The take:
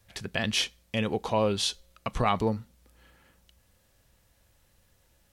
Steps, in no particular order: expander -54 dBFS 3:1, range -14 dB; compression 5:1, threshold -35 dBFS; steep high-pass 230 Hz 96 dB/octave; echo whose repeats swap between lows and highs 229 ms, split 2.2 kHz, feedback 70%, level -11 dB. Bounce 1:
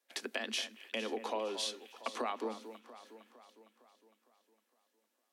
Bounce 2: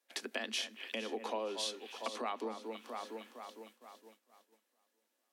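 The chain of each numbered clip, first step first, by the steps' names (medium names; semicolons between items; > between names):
steep high-pass > expander > compression > echo whose repeats swap between lows and highs; echo whose repeats swap between lows and highs > compression > steep high-pass > expander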